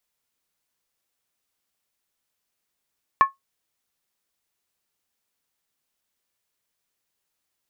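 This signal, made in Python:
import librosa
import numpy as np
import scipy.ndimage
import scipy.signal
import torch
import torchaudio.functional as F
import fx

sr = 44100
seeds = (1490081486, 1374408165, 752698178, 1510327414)

y = fx.strike_skin(sr, length_s=0.63, level_db=-7, hz=1090.0, decay_s=0.15, tilt_db=12.0, modes=5)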